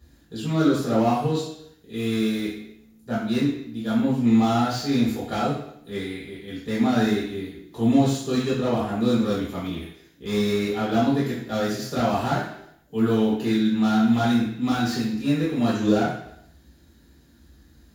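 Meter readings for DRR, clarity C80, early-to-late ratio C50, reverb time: −8.5 dB, 5.5 dB, 2.0 dB, 0.70 s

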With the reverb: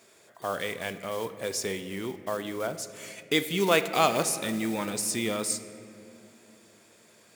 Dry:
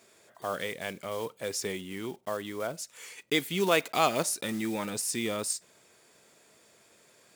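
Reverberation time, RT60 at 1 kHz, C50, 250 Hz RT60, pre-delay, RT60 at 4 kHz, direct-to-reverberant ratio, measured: 2.7 s, 2.2 s, 11.5 dB, 3.8 s, 19 ms, 1.6 s, 10.5 dB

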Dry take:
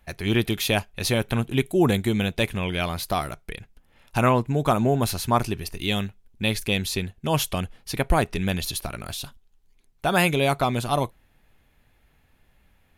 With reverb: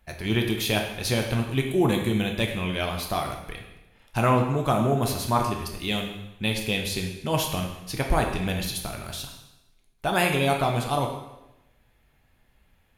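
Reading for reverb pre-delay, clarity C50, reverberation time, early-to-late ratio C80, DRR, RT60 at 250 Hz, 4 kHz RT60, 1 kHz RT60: 5 ms, 5.5 dB, 0.95 s, 8.0 dB, 2.0 dB, 1.0 s, 0.90 s, 0.95 s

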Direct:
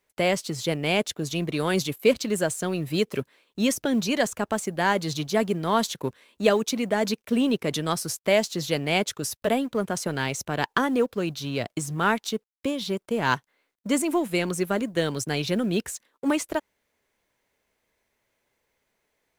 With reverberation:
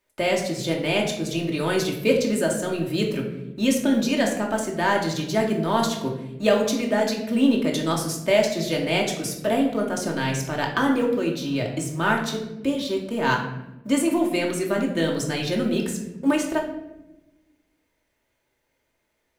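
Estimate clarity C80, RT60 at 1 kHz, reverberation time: 9.0 dB, 0.80 s, 1.0 s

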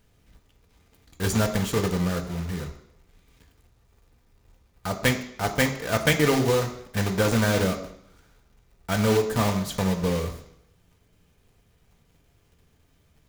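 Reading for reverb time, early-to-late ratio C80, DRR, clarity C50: 0.70 s, 12.5 dB, 3.5 dB, 10.0 dB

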